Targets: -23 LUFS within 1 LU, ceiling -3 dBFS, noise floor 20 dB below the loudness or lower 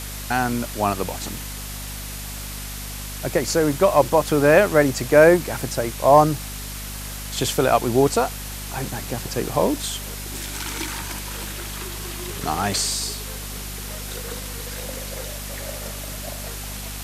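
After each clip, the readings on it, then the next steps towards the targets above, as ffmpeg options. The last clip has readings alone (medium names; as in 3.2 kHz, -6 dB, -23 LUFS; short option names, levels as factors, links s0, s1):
hum 50 Hz; highest harmonic 250 Hz; hum level -32 dBFS; noise floor -33 dBFS; noise floor target -43 dBFS; loudness -22.5 LUFS; peak level -1.5 dBFS; loudness target -23.0 LUFS
-> -af "bandreject=f=50:t=h:w=4,bandreject=f=100:t=h:w=4,bandreject=f=150:t=h:w=4,bandreject=f=200:t=h:w=4,bandreject=f=250:t=h:w=4"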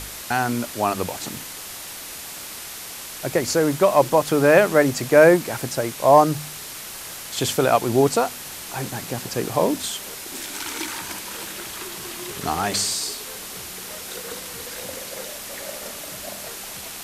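hum not found; noise floor -36 dBFS; noise floor target -43 dBFS
-> -af "afftdn=nr=7:nf=-36"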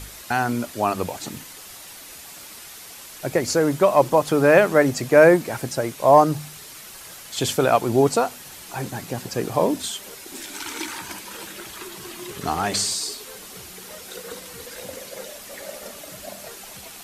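noise floor -41 dBFS; loudness -20.5 LUFS; peak level -2.0 dBFS; loudness target -23.0 LUFS
-> -af "volume=0.75"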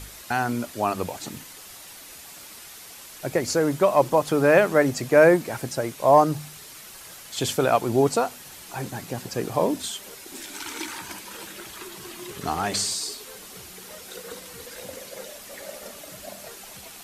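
loudness -23.0 LUFS; peak level -4.5 dBFS; noise floor -44 dBFS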